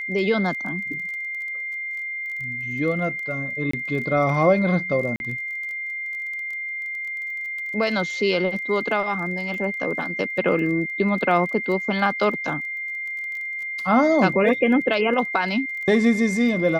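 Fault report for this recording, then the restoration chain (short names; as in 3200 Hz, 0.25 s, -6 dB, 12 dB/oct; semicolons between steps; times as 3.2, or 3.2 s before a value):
crackle 23/s -32 dBFS
tone 2100 Hz -27 dBFS
3.71–3.73 gap 24 ms
5.16–5.2 gap 41 ms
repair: de-click; notch 2100 Hz, Q 30; interpolate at 3.71, 24 ms; interpolate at 5.16, 41 ms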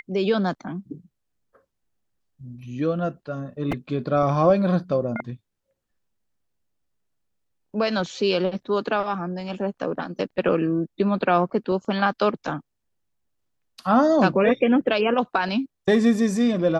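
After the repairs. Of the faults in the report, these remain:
none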